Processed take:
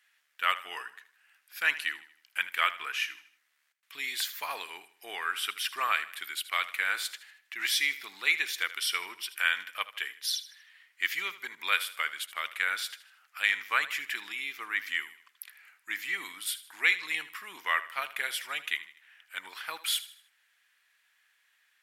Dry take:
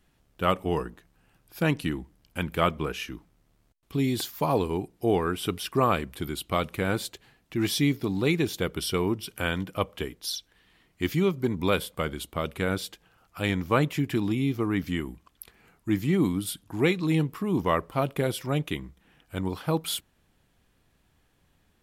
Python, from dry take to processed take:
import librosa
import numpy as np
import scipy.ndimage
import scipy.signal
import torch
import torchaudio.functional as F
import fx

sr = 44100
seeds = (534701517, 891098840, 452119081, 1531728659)

p1 = fx.highpass_res(x, sr, hz=1800.0, q=2.6)
y = p1 + fx.echo_feedback(p1, sr, ms=78, feedback_pct=41, wet_db=-15.5, dry=0)